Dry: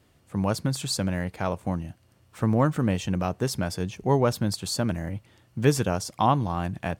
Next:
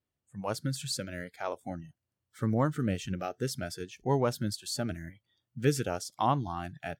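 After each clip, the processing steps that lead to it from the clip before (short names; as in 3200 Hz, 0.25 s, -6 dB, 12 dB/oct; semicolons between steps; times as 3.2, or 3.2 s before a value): spectral noise reduction 21 dB; gain -5.5 dB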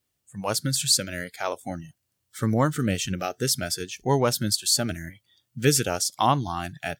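high shelf 2600 Hz +11.5 dB; gain +5 dB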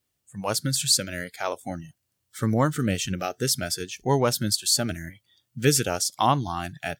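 nothing audible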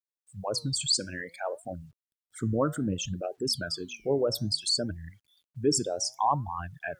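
formant sharpening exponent 3; flange 0.6 Hz, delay 2.4 ms, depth 8.3 ms, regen +88%; bit-crush 12-bit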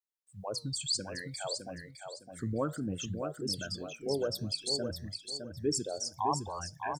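feedback echo 0.61 s, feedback 28%, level -6.5 dB; gain -6 dB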